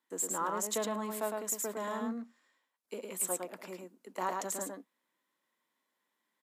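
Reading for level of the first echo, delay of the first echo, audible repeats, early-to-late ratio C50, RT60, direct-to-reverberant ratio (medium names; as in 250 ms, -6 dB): -3.5 dB, 108 ms, 1, no reverb, no reverb, no reverb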